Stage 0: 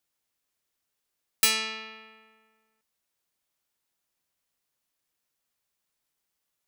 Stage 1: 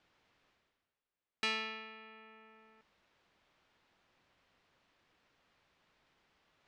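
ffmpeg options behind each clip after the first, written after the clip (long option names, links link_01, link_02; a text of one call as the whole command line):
ffmpeg -i in.wav -af "areverse,acompressor=mode=upward:threshold=-42dB:ratio=2.5,areverse,lowpass=3700,aemphasis=mode=reproduction:type=50fm,volume=-5.5dB" out.wav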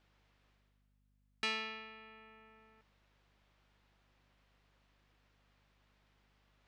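ffmpeg -i in.wav -af "aeval=exprs='val(0)+0.000251*(sin(2*PI*50*n/s)+sin(2*PI*2*50*n/s)/2+sin(2*PI*3*50*n/s)/3+sin(2*PI*4*50*n/s)/4+sin(2*PI*5*50*n/s)/5)':channel_layout=same,volume=-1.5dB" out.wav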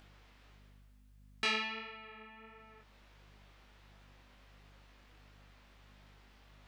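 ffmpeg -i in.wav -filter_complex "[0:a]asplit=2[link_01][link_02];[link_02]acompressor=mode=upward:threshold=-52dB:ratio=2.5,volume=2dB[link_03];[link_01][link_03]amix=inputs=2:normalize=0,flanger=delay=19.5:depth=4.4:speed=1.5" out.wav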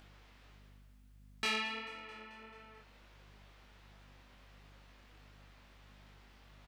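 ffmpeg -i in.wav -filter_complex "[0:a]asoftclip=type=tanh:threshold=-28.5dB,asplit=7[link_01][link_02][link_03][link_04][link_05][link_06][link_07];[link_02]adelay=219,afreqshift=43,volume=-19dB[link_08];[link_03]adelay=438,afreqshift=86,volume=-22.9dB[link_09];[link_04]adelay=657,afreqshift=129,volume=-26.8dB[link_10];[link_05]adelay=876,afreqshift=172,volume=-30.6dB[link_11];[link_06]adelay=1095,afreqshift=215,volume=-34.5dB[link_12];[link_07]adelay=1314,afreqshift=258,volume=-38.4dB[link_13];[link_01][link_08][link_09][link_10][link_11][link_12][link_13]amix=inputs=7:normalize=0,volume=1dB" out.wav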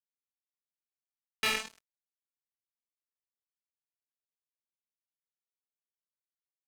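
ffmpeg -i in.wav -af "acrusher=bits=4:mix=0:aa=0.5,volume=6dB" out.wav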